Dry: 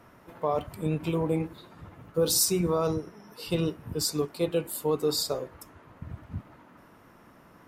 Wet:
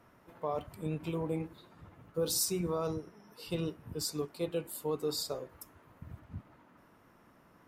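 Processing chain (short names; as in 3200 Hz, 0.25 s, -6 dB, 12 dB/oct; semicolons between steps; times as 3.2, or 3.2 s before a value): 5.49–6.2 high shelf 10000 Hz +11.5 dB; gain -7.5 dB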